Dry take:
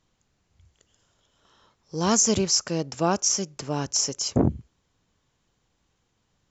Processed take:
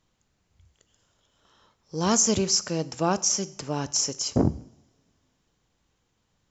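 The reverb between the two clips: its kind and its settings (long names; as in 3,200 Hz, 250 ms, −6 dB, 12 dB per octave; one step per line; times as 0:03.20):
coupled-rooms reverb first 0.69 s, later 2.9 s, from −27 dB, DRR 15 dB
level −1 dB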